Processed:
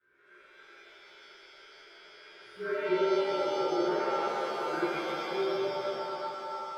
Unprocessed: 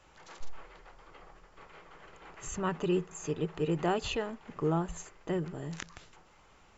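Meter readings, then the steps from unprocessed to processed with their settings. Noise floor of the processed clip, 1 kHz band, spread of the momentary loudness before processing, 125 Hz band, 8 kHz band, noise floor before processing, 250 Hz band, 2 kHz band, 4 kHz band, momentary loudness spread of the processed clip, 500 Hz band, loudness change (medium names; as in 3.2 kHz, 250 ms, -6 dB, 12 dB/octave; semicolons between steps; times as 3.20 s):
-58 dBFS, +6.0 dB, 22 LU, -16.0 dB, no reading, -61 dBFS, -1.0 dB, +5.5 dB, +3.5 dB, 11 LU, +5.0 dB, +3.0 dB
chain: frequency axis rescaled in octaves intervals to 111%; two resonant band-passes 760 Hz, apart 1.9 oct; pitch-shifted reverb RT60 3.3 s, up +7 st, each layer -2 dB, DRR -11.5 dB; trim -2 dB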